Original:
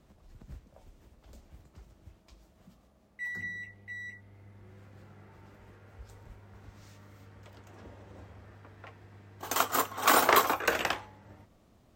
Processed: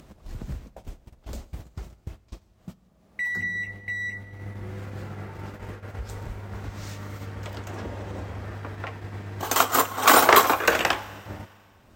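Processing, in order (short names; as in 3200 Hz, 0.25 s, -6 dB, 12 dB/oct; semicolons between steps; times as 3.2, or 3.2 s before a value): gate -53 dBFS, range -30 dB; upward compressor, threshold -33 dBFS; on a send: reverb RT60 2.2 s, pre-delay 34 ms, DRR 17.5 dB; on the sum: gain +7.5 dB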